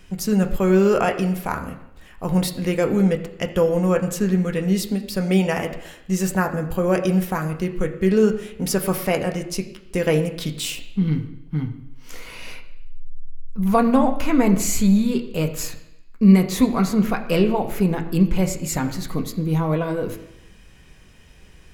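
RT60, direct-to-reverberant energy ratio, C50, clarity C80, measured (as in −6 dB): 0.85 s, 4.0 dB, 11.0 dB, 12.5 dB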